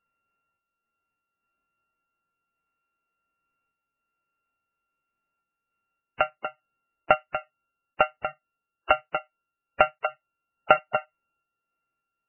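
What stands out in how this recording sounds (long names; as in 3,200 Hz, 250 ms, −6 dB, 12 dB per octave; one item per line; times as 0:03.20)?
a buzz of ramps at a fixed pitch in blocks of 32 samples
sample-and-hold tremolo
MP3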